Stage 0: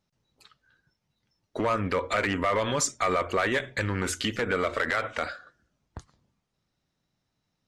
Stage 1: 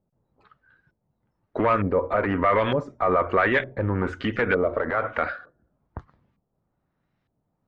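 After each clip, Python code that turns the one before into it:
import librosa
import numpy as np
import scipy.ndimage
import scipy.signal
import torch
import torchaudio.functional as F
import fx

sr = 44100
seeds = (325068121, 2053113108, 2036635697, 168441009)

y = fx.filter_lfo_lowpass(x, sr, shape='saw_up', hz=1.1, low_hz=560.0, high_hz=2500.0, q=1.1)
y = y * 10.0 ** (4.5 / 20.0)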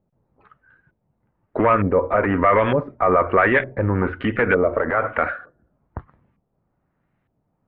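y = scipy.signal.sosfilt(scipy.signal.butter(4, 2700.0, 'lowpass', fs=sr, output='sos'), x)
y = y * 10.0 ** (4.5 / 20.0)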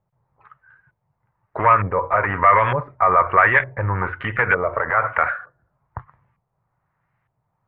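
y = fx.graphic_eq(x, sr, hz=(125, 250, 1000, 2000), db=(10, -11, 11, 8))
y = y * 10.0 ** (-6.0 / 20.0)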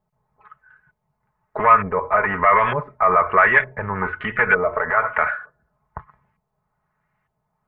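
y = x + 0.66 * np.pad(x, (int(4.7 * sr / 1000.0), 0))[:len(x)]
y = y * 10.0 ** (-1.0 / 20.0)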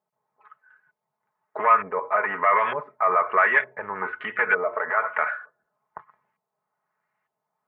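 y = scipy.signal.sosfilt(scipy.signal.butter(2, 330.0, 'highpass', fs=sr, output='sos'), x)
y = y * 10.0 ** (-4.5 / 20.0)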